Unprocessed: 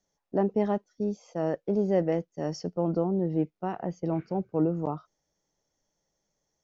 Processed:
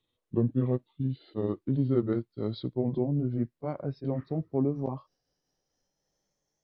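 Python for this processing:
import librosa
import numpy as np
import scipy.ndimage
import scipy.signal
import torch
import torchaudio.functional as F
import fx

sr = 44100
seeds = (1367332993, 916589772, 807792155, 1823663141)

y = fx.pitch_glide(x, sr, semitones=-9.5, runs='ending unshifted')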